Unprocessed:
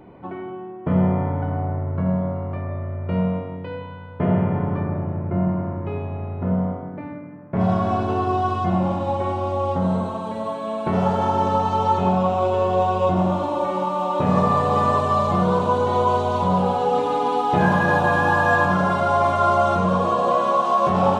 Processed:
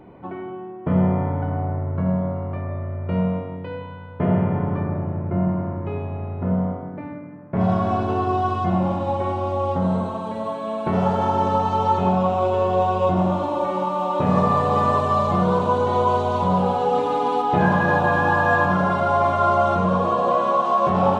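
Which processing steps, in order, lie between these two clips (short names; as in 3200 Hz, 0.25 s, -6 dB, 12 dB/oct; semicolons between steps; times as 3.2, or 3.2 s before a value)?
high shelf 5100 Hz -4 dB, from 17.42 s -9.5 dB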